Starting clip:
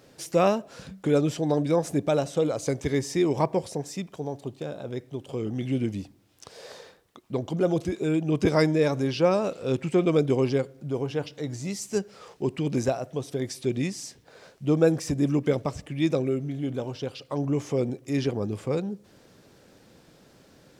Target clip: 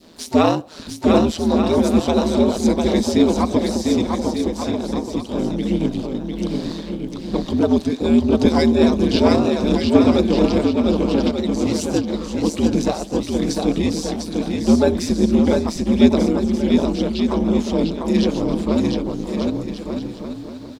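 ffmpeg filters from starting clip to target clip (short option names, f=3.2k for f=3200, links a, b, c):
-filter_complex "[0:a]aeval=exprs='val(0)*sin(2*PI*81*n/s)':c=same,adynamicequalizer=threshold=0.00708:dfrequency=1100:dqfactor=0.86:tfrequency=1100:tqfactor=0.86:attack=5:release=100:ratio=0.375:range=2.5:mode=cutabove:tftype=bell,asplit=2[a][b];[b]asetrate=66075,aresample=44100,atempo=0.66742,volume=-16dB[c];[a][c]amix=inputs=2:normalize=0,asplit=2[d][e];[e]asoftclip=type=hard:threshold=-25.5dB,volume=-11.5dB[f];[d][f]amix=inputs=2:normalize=0,equalizer=f=250:t=o:w=0.67:g=10,equalizer=f=1k:t=o:w=0.67:g=6,equalizer=f=4k:t=o:w=0.67:g=10,asplit=2[g][h];[h]aecho=0:1:700|1190|1533|1773|1941:0.631|0.398|0.251|0.158|0.1[i];[g][i]amix=inputs=2:normalize=0,volume=4dB"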